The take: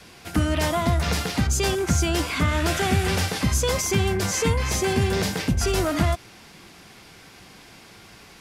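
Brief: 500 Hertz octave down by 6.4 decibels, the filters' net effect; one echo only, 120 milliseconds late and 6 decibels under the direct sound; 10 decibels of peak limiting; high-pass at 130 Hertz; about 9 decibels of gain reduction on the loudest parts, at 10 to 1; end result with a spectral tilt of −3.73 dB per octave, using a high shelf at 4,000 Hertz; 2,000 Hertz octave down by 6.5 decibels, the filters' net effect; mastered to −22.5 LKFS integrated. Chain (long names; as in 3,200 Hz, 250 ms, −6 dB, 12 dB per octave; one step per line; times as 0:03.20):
high-pass filter 130 Hz
parametric band 500 Hz −9 dB
parametric band 2,000 Hz −7 dB
high-shelf EQ 4,000 Hz −3.5 dB
downward compressor 10 to 1, threshold −30 dBFS
brickwall limiter −29 dBFS
single-tap delay 120 ms −6 dB
level +14 dB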